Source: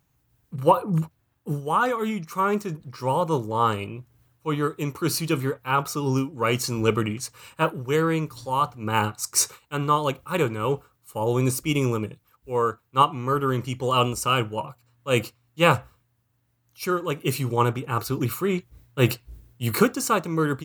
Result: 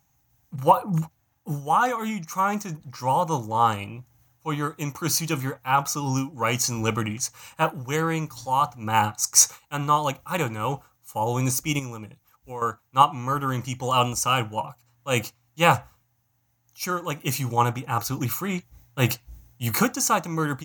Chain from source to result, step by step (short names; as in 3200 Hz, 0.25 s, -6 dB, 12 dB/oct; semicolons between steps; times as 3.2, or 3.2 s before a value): thirty-one-band EQ 400 Hz -12 dB, 800 Hz +9 dB, 2000 Hz +3 dB, 6300 Hz +12 dB, 16000 Hz +10 dB; 11.79–12.62 compressor 2.5:1, threshold -35 dBFS, peak gain reduction 10.5 dB; gain -1 dB